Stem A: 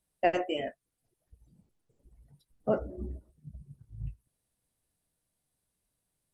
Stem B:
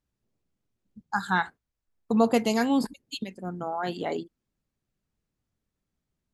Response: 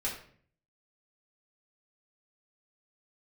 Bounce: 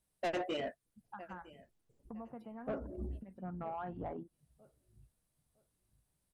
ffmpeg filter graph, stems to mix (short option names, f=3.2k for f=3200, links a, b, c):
-filter_complex "[0:a]volume=-1.5dB,asplit=2[a][b];[b]volume=-23.5dB[c];[1:a]lowpass=f=1.4k:w=0.5412,lowpass=f=1.4k:w=1.3066,equalizer=f=400:w=1.5:g=-8,acompressor=threshold=-35dB:ratio=4,volume=-2.5dB,afade=t=in:st=3.23:d=0.22:silence=0.354813,asplit=2[d][e];[e]apad=whole_len=279470[f];[a][f]sidechaincompress=threshold=-53dB:ratio=4:attack=27:release=188[g];[c]aecho=0:1:958|1916|2874|3832:1|0.24|0.0576|0.0138[h];[g][d][h]amix=inputs=3:normalize=0,asoftclip=type=tanh:threshold=-31dB"